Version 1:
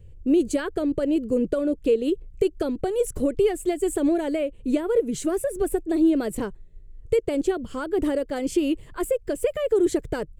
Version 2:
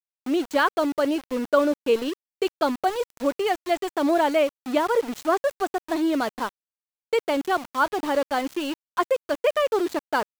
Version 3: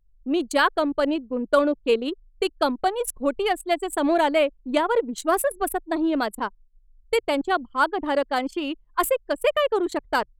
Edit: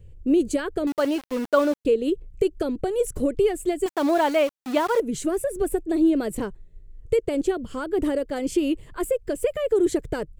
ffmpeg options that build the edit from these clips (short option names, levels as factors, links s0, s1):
-filter_complex "[1:a]asplit=2[s0][s1];[0:a]asplit=3[s2][s3][s4];[s2]atrim=end=0.872[s5];[s0]atrim=start=0.868:end=1.852[s6];[s3]atrim=start=1.848:end=3.862[s7];[s1]atrim=start=3.858:end=5.002[s8];[s4]atrim=start=4.998[s9];[s5][s6]acrossfade=d=0.004:c1=hsin:c2=hsin[s10];[s10][s7]acrossfade=d=0.004:c1=hsin:c2=hsin[s11];[s11][s8]acrossfade=d=0.004:c1=hsin:c2=hsin[s12];[s12][s9]acrossfade=d=0.004:c1=hsin:c2=hsin"